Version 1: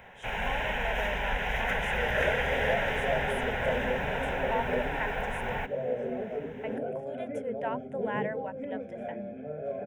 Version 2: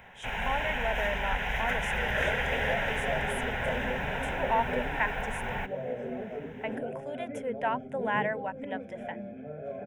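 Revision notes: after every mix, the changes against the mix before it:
speech +6.5 dB; master: add peaking EQ 500 Hz -4.5 dB 0.91 oct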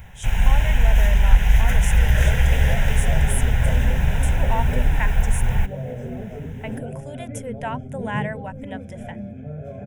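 master: remove three-band isolator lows -22 dB, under 240 Hz, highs -17 dB, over 3.4 kHz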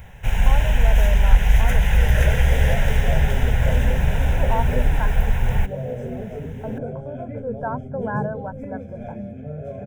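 speech: add brick-wall FIR low-pass 1.7 kHz; master: add peaking EQ 500 Hz +4.5 dB 0.91 oct

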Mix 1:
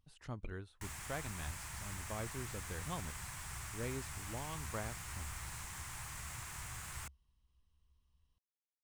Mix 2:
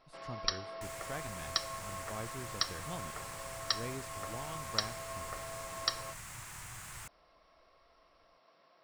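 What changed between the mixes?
first sound: unmuted; master: add peaking EQ 69 Hz -12.5 dB 0.37 oct

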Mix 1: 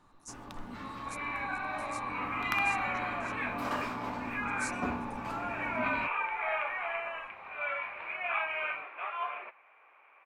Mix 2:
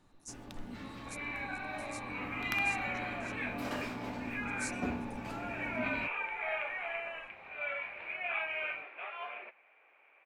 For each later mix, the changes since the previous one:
master: add peaking EQ 1.1 kHz -11 dB 0.82 oct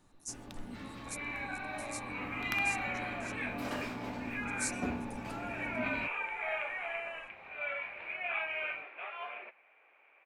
speech: add treble shelf 5.6 kHz +9 dB

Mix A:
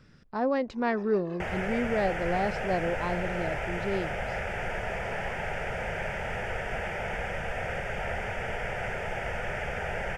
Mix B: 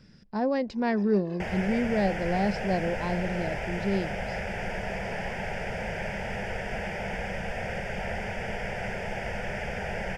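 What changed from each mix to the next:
master: add graphic EQ with 31 bands 200 Hz +9 dB, 1.25 kHz -9 dB, 5 kHz +8 dB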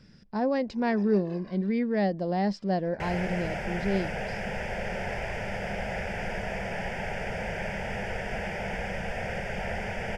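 second sound: entry +1.60 s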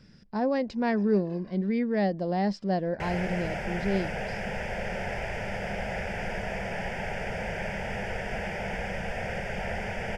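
first sound -4.5 dB

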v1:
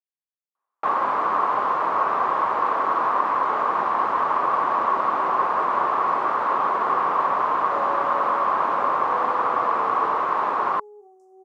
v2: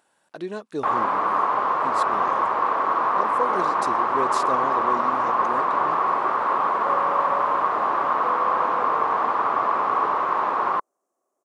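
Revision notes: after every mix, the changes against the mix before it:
speech: unmuted; second sound: entry -0.85 s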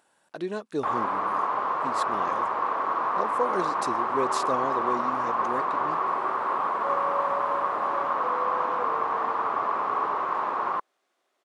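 first sound -5.0 dB; second sound: remove inverse Chebyshev band-stop 1.4–3.6 kHz, stop band 50 dB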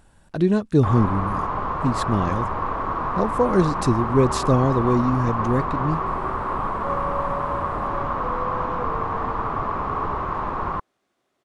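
speech +5.0 dB; master: remove high-pass 450 Hz 12 dB/octave

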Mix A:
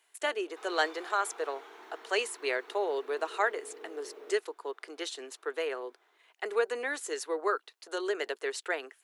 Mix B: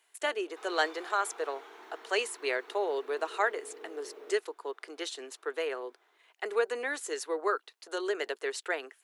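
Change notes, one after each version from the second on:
no change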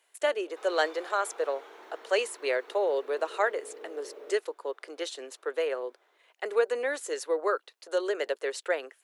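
master: add peaking EQ 550 Hz +12 dB 0.29 oct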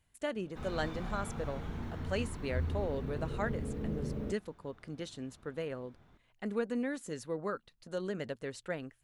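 speech -10.0 dB; master: remove steep high-pass 370 Hz 48 dB/octave

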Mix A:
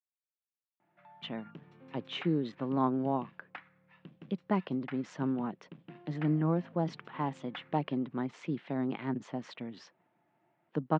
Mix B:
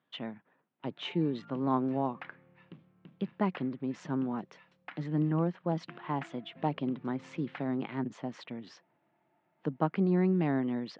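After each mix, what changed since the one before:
speech: entry -1.10 s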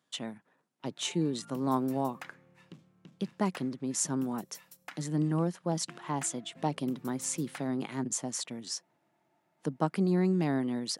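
master: remove low-pass 3.1 kHz 24 dB/octave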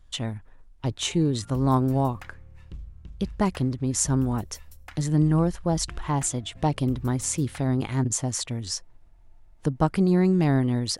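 speech +6.0 dB; master: remove steep high-pass 160 Hz 36 dB/octave

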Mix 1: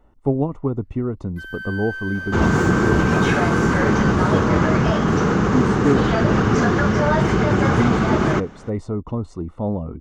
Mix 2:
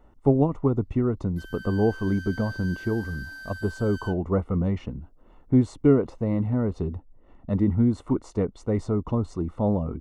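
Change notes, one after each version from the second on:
first sound: add high-order bell 1.3 kHz -11 dB 2.5 oct; second sound: muted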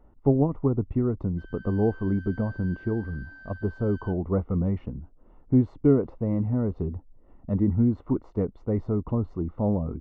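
master: add tape spacing loss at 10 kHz 43 dB

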